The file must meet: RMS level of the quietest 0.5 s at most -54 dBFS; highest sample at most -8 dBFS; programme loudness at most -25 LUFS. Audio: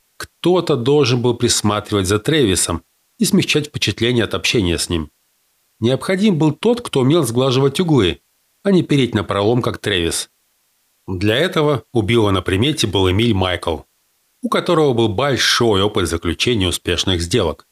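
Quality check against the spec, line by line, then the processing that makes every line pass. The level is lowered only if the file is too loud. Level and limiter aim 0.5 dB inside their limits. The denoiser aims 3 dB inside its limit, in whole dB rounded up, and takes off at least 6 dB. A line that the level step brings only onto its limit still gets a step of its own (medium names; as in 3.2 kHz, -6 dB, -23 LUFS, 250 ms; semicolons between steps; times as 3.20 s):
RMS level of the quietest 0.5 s -63 dBFS: pass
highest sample -4.0 dBFS: fail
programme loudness -16.5 LUFS: fail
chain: trim -9 dB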